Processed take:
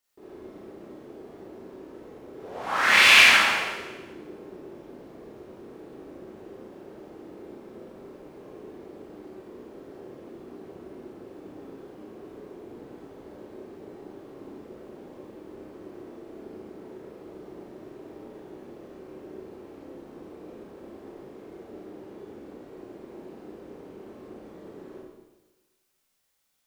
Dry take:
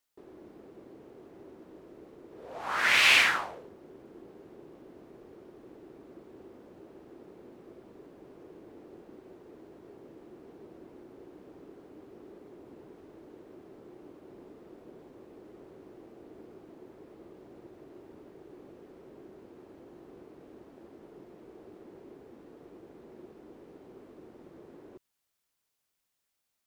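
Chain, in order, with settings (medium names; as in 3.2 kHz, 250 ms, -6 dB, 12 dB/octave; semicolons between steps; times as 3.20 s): Schroeder reverb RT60 1.2 s, combs from 29 ms, DRR -6.5 dB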